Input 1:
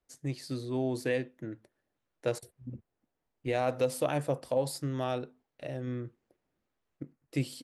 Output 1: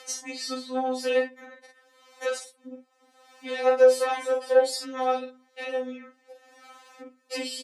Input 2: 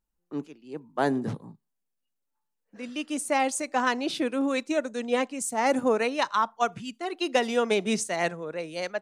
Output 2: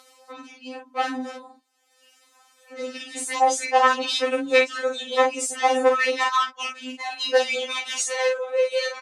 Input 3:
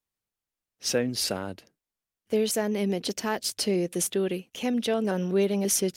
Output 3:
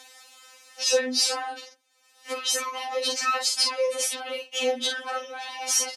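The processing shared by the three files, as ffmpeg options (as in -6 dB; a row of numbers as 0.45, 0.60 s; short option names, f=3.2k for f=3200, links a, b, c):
-filter_complex "[0:a]asplit=2[a][b];[b]acompressor=threshold=-40dB:ratio=6,volume=-1dB[c];[a][c]amix=inputs=2:normalize=0,aecho=1:1:10|47:0.596|0.562,acompressor=mode=upward:threshold=-30dB:ratio=2.5,asoftclip=type=tanh:threshold=-21.5dB,highpass=580,lowpass=7.4k,afftfilt=real='re*3.46*eq(mod(b,12),0)':imag='im*3.46*eq(mod(b,12),0)':win_size=2048:overlap=0.75,volume=9dB"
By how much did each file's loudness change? +8.0, +5.0, +1.5 LU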